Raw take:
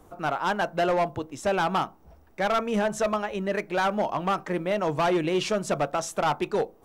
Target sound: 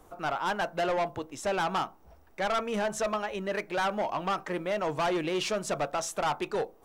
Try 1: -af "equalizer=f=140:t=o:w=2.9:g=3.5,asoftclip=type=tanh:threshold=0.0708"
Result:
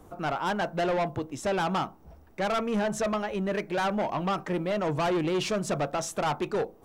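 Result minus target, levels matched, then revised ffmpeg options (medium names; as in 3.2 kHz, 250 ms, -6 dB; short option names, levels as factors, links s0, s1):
125 Hz band +6.0 dB
-af "equalizer=f=140:t=o:w=2.9:g=-6.5,asoftclip=type=tanh:threshold=0.0708"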